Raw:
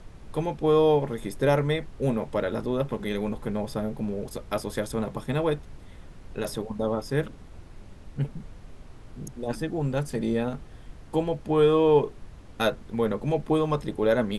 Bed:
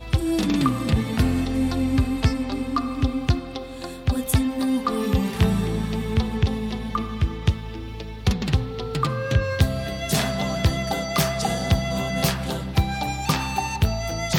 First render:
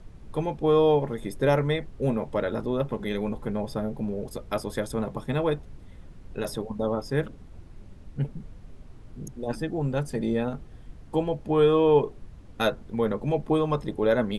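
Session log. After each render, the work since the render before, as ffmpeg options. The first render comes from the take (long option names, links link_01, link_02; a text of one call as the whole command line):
ffmpeg -i in.wav -af "afftdn=noise_reduction=6:noise_floor=-47" out.wav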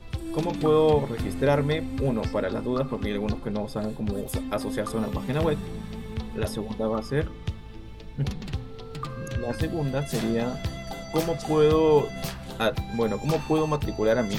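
ffmpeg -i in.wav -i bed.wav -filter_complex "[1:a]volume=-11dB[link_01];[0:a][link_01]amix=inputs=2:normalize=0" out.wav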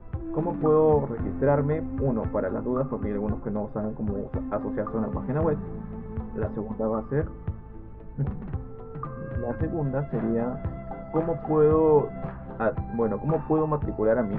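ffmpeg -i in.wav -af "lowpass=frequency=1500:width=0.5412,lowpass=frequency=1500:width=1.3066,bandreject=frequency=60:width_type=h:width=6,bandreject=frequency=120:width_type=h:width=6" out.wav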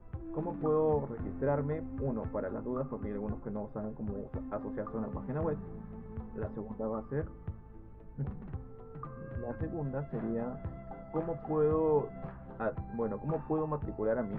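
ffmpeg -i in.wav -af "volume=-9dB" out.wav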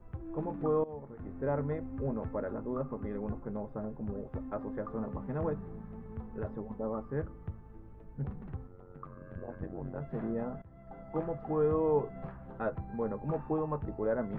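ffmpeg -i in.wav -filter_complex "[0:a]asplit=3[link_01][link_02][link_03];[link_01]afade=type=out:start_time=8.66:duration=0.02[link_04];[link_02]tremolo=f=92:d=0.947,afade=type=in:start_time=8.66:duration=0.02,afade=type=out:start_time=10:duration=0.02[link_05];[link_03]afade=type=in:start_time=10:duration=0.02[link_06];[link_04][link_05][link_06]amix=inputs=3:normalize=0,asplit=3[link_07][link_08][link_09];[link_07]atrim=end=0.84,asetpts=PTS-STARTPTS,afade=type=out:start_time=0.836:duration=0.004:curve=hsin:silence=0.105925[link_10];[link_08]atrim=start=0.84:end=10.62,asetpts=PTS-STARTPTS,afade=type=in:duration=0.8:silence=0.105925,afade=type=out:start_time=9.776:duration=0.004:curve=hsin:silence=0.0841395[link_11];[link_09]atrim=start=10.62,asetpts=PTS-STARTPTS,afade=type=in:duration=0.47:silence=0.0841395[link_12];[link_10][link_11][link_12]concat=n=3:v=0:a=1" out.wav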